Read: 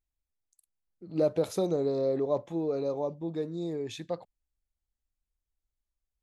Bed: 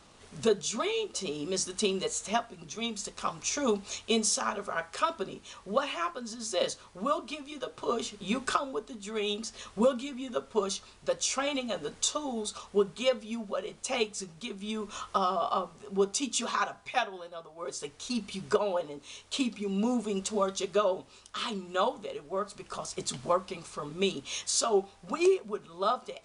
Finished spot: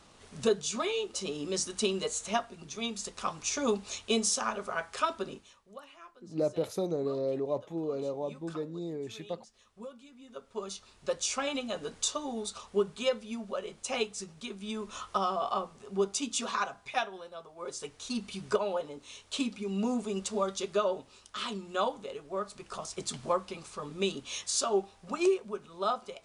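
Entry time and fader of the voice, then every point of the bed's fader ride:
5.20 s, −3.5 dB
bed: 0:05.33 −1 dB
0:05.65 −19.5 dB
0:09.87 −19.5 dB
0:11.09 −2 dB

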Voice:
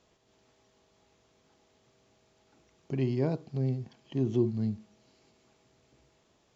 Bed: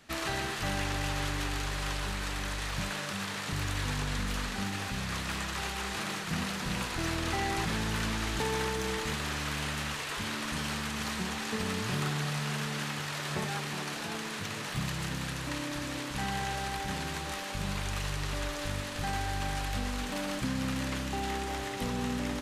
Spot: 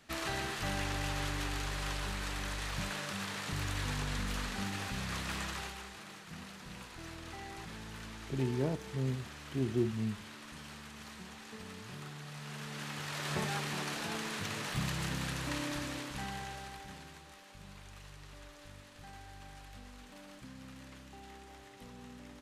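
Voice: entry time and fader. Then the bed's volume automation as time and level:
5.40 s, −4.5 dB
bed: 0:05.49 −3.5 dB
0:05.97 −14.5 dB
0:12.23 −14.5 dB
0:13.31 −1.5 dB
0:15.71 −1.5 dB
0:17.31 −18 dB

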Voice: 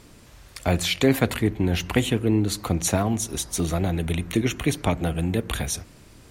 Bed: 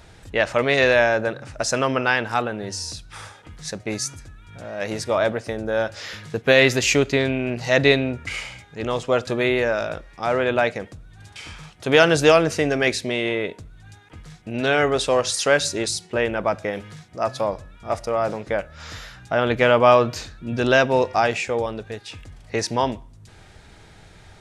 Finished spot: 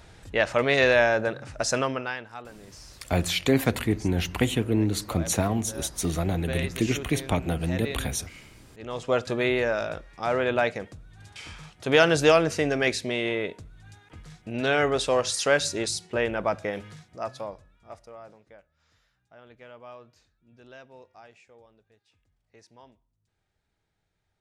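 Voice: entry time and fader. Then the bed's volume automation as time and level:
2.45 s, −2.5 dB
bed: 0:01.77 −3 dB
0:02.32 −18.5 dB
0:08.67 −18.5 dB
0:09.09 −4 dB
0:16.87 −4 dB
0:18.78 −31 dB

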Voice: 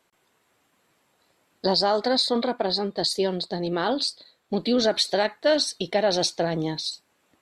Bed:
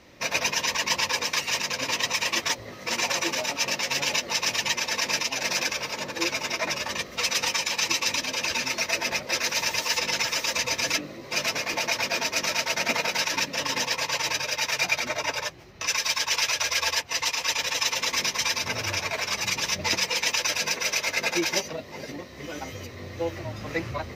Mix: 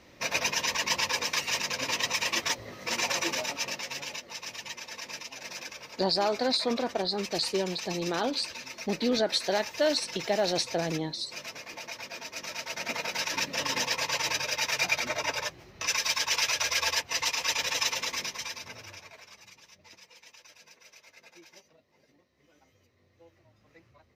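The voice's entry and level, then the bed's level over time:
4.35 s, −5.0 dB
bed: 0:03.35 −3 dB
0:04.24 −14 dB
0:12.21 −14 dB
0:13.57 −2.5 dB
0:17.83 −2.5 dB
0:19.67 −28.5 dB

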